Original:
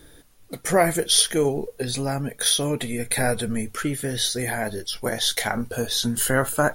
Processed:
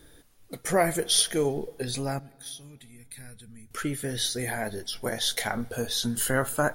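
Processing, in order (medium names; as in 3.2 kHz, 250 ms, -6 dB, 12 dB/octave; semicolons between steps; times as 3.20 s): 2.19–3.71 s: amplifier tone stack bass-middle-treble 6-0-2; on a send: reverberation RT60 2.7 s, pre-delay 3 ms, DRR 23 dB; on the sum: trim -4.5 dB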